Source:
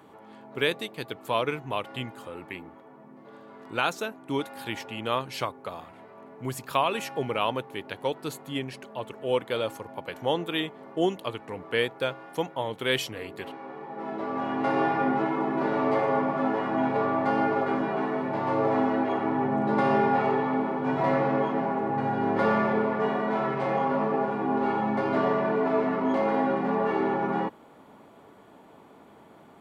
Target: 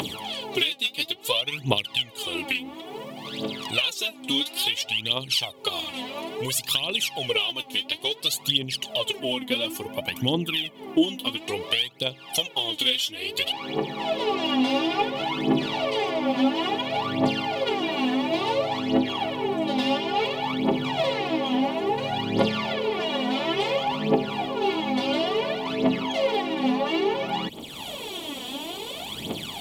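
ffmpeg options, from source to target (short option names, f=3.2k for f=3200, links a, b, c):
-filter_complex "[0:a]highshelf=f=2.2k:t=q:w=3:g=12.5,acompressor=mode=upward:threshold=-37dB:ratio=2.5,asplit=3[a][b][c];[a]afade=t=out:st=9.18:d=0.02[d];[b]equalizer=f=250:t=o:w=1:g=8,equalizer=f=500:t=o:w=1:g=-6,equalizer=f=4k:t=o:w=1:g=-11,equalizer=f=8k:t=o:w=1:g=-6,afade=t=in:st=9.18:d=0.02,afade=t=out:st=11.36:d=0.02[e];[c]afade=t=in:st=11.36:d=0.02[f];[d][e][f]amix=inputs=3:normalize=0,acompressor=threshold=-33dB:ratio=8,aphaser=in_gain=1:out_gain=1:delay=4.1:decay=0.75:speed=0.58:type=triangular,volume=7.5dB"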